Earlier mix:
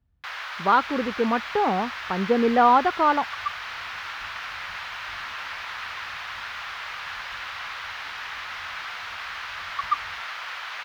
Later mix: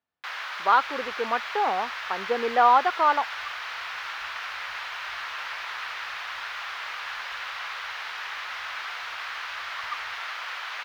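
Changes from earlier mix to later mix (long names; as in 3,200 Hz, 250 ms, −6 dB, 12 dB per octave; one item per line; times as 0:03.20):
speech: add high-pass filter 570 Hz 12 dB per octave
second sound −11.5 dB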